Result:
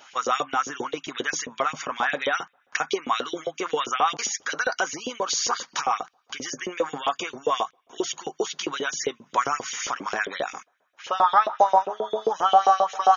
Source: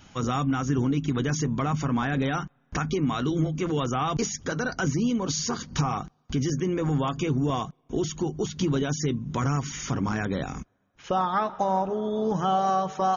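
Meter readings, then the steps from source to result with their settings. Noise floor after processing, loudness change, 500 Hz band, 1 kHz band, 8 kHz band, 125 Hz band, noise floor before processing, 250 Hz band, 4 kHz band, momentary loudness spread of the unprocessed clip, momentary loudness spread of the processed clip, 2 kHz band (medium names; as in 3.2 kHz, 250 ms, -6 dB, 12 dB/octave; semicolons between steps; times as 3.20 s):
-66 dBFS, +1.5 dB, +1.5 dB, +6.0 dB, no reading, -24.0 dB, -67 dBFS, -12.0 dB, +5.5 dB, 5 LU, 12 LU, +6.5 dB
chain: LFO high-pass saw up 7.5 Hz 440–3300 Hz; trim +3.5 dB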